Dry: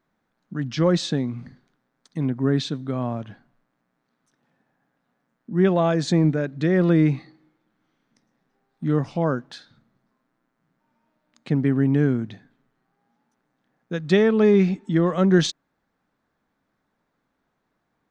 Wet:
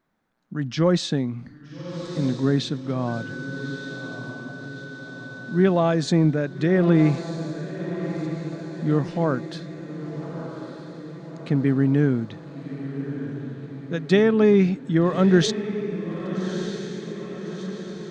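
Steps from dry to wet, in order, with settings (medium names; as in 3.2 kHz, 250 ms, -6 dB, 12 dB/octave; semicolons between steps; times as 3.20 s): 3.07–5.68 s: whistle 1.5 kHz -36 dBFS; echo that smears into a reverb 1244 ms, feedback 57%, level -10 dB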